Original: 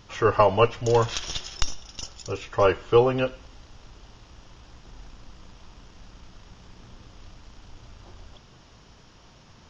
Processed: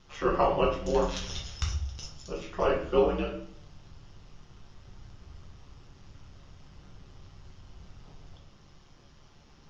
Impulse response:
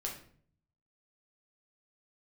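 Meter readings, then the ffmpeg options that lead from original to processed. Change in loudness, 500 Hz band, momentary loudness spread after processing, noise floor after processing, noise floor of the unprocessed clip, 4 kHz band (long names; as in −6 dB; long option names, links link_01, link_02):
−6.0 dB, −5.5 dB, 15 LU, −56 dBFS, −53 dBFS, −7.0 dB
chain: -filter_complex "[0:a]aeval=exprs='val(0)*sin(2*PI*71*n/s)':channel_layout=same[link_01];[1:a]atrim=start_sample=2205[link_02];[link_01][link_02]afir=irnorm=-1:irlink=0,volume=-4dB"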